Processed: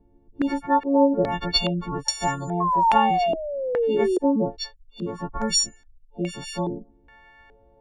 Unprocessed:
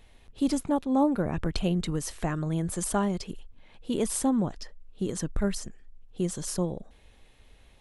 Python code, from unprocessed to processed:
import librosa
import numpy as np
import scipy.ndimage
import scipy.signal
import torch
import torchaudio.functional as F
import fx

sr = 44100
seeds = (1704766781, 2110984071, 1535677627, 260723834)

y = fx.freq_snap(x, sr, grid_st=4)
y = fx.spec_gate(y, sr, threshold_db=-30, keep='strong')
y = fx.peak_eq(y, sr, hz=840.0, db=12.5, octaves=0.37)
y = fx.spec_paint(y, sr, seeds[0], shape='fall', start_s=2.6, length_s=1.58, low_hz=360.0, high_hz=1100.0, level_db=-22.0)
y = fx.filter_held_lowpass(y, sr, hz=2.4, low_hz=320.0, high_hz=6100.0)